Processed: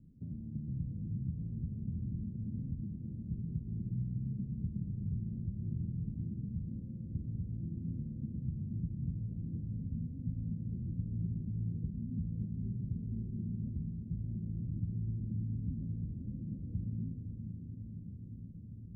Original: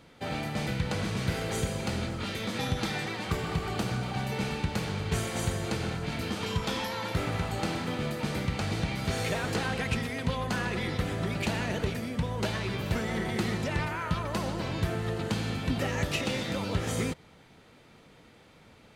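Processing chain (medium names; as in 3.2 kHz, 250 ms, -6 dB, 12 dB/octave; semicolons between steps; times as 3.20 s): de-hum 49.09 Hz, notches 11; compression, threshold -36 dBFS, peak gain reduction 12 dB; inverse Chebyshev low-pass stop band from 990 Hz, stop band 70 dB; echo that smears into a reverb 547 ms, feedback 78%, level -7.5 dB; trim +3 dB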